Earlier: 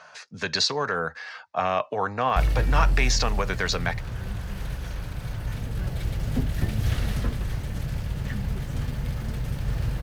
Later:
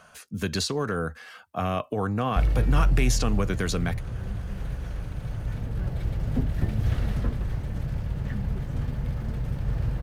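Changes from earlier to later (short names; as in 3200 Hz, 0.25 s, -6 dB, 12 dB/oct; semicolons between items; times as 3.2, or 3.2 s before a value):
speech: remove speaker cabinet 160–5300 Hz, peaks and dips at 210 Hz -9 dB, 320 Hz -8 dB, 600 Hz +4 dB, 900 Hz +8 dB, 1800 Hz +4 dB, 3100 Hz -7 dB; master: add high shelf 2000 Hz -11 dB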